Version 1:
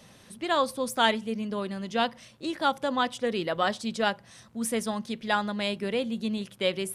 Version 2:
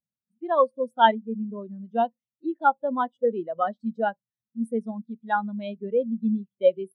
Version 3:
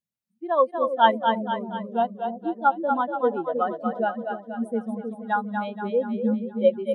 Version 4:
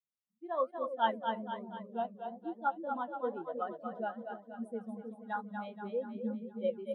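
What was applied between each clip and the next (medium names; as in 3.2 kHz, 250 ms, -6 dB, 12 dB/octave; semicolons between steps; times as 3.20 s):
spectral contrast expander 2.5:1; trim +4 dB
two-band feedback delay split 520 Hz, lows 314 ms, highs 238 ms, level -5.5 dB
flange 1.1 Hz, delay 1.5 ms, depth 9.9 ms, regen -67%; trim -8.5 dB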